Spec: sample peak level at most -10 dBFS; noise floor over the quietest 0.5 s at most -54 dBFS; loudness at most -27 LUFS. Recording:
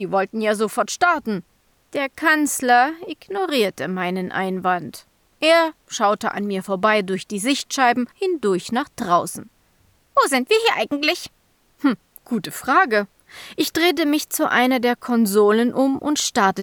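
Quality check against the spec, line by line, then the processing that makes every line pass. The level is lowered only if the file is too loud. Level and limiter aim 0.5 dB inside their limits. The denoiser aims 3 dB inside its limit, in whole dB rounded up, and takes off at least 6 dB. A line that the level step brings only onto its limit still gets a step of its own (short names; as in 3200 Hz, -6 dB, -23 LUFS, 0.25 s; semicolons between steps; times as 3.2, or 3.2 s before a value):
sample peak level -4.5 dBFS: fail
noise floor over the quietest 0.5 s -61 dBFS: OK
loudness -20.0 LUFS: fail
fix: gain -7.5 dB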